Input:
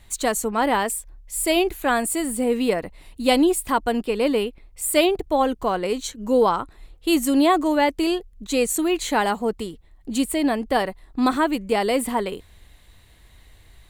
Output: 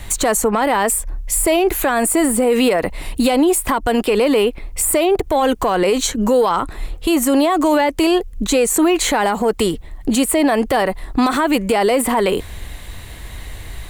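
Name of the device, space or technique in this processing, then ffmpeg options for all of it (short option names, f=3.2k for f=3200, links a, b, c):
mastering chain: -filter_complex "[0:a]equalizer=f=4k:t=o:w=0.77:g=-3,acrossover=split=410|1800[a][b][c];[a]acompressor=threshold=-36dB:ratio=4[d];[b]acompressor=threshold=-24dB:ratio=4[e];[c]acompressor=threshold=-36dB:ratio=4[f];[d][e][f]amix=inputs=3:normalize=0,acompressor=threshold=-24dB:ratio=6,asoftclip=type=tanh:threshold=-16.5dB,alimiter=level_in=26dB:limit=-1dB:release=50:level=0:latency=1,volume=-7dB"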